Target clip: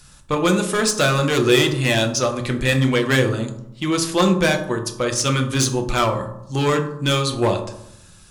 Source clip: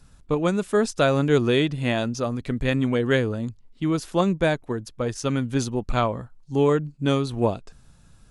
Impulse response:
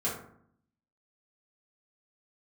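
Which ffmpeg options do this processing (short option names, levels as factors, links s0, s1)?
-filter_complex "[0:a]tiltshelf=f=1200:g=-7,asoftclip=type=hard:threshold=0.0841,asplit=2[s0][s1];[1:a]atrim=start_sample=2205,asetrate=34398,aresample=44100[s2];[s1][s2]afir=irnorm=-1:irlink=0,volume=0.376[s3];[s0][s3]amix=inputs=2:normalize=0,volume=1.78"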